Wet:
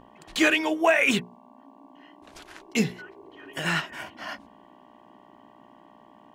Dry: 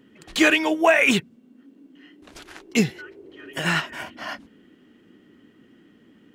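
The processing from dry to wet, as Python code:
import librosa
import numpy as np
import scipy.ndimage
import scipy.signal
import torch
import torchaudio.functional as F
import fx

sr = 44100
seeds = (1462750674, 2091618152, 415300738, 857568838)

y = fx.dmg_buzz(x, sr, base_hz=60.0, harmonics=19, level_db=-48.0, tilt_db=-1, odd_only=False)
y = fx.hum_notches(y, sr, base_hz=60, count=9)
y = F.gain(torch.from_numpy(y), -3.5).numpy()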